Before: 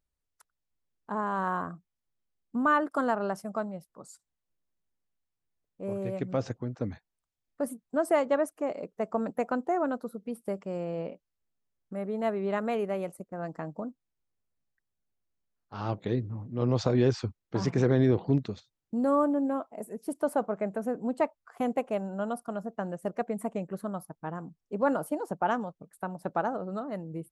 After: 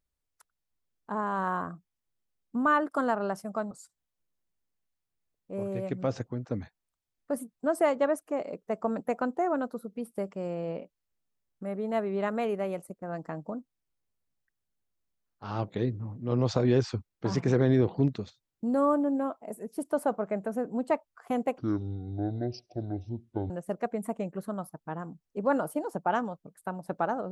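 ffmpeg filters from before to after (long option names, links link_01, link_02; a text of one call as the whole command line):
ffmpeg -i in.wav -filter_complex "[0:a]asplit=4[link_01][link_02][link_03][link_04];[link_01]atrim=end=3.712[link_05];[link_02]atrim=start=4.008:end=21.884[link_06];[link_03]atrim=start=21.88:end=22.86,asetpts=PTS-STARTPTS,asetrate=22491,aresample=44100,atrim=end_sample=84741,asetpts=PTS-STARTPTS[link_07];[link_04]atrim=start=22.856[link_08];[link_05][link_06]acrossfade=duration=0.004:curve1=hsin:curve2=hsin[link_09];[link_09][link_07]acrossfade=duration=0.004:curve1=hsin:curve2=hsin[link_10];[link_10][link_08]acrossfade=duration=0.004:curve1=hsin:curve2=hsin" out.wav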